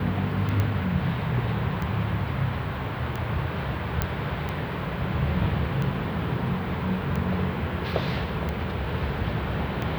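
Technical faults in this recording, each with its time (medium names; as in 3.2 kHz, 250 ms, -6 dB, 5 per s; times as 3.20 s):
tick 45 rpm -18 dBFS
0.60 s: pop -14 dBFS
4.02 s: pop -9 dBFS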